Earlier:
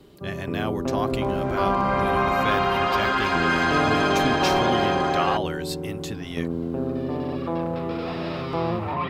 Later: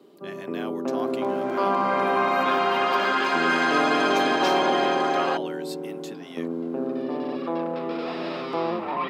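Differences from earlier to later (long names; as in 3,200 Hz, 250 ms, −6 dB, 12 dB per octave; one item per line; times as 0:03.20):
speech −6.5 dB
master: add high-pass filter 220 Hz 24 dB per octave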